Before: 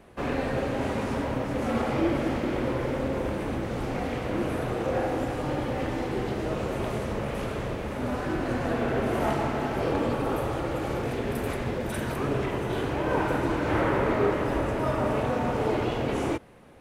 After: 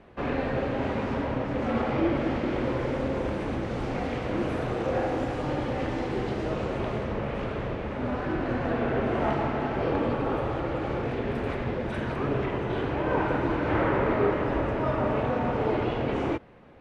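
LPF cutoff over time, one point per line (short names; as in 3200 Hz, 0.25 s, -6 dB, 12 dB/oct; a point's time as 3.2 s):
2.11 s 3700 Hz
2.81 s 6100 Hz
6.42 s 6100 Hz
7.09 s 3300 Hz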